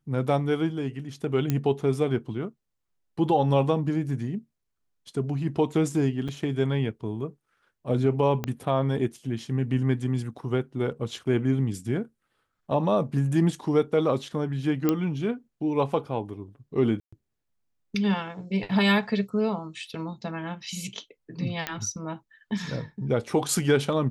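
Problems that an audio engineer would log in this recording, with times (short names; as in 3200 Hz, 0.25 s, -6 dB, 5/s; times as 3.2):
1.5 pop -12 dBFS
6.28–6.29 gap 6.2 ms
8.44 pop -14 dBFS
14.89 pop -10 dBFS
17–17.12 gap 0.125 s
21.67 pop -12 dBFS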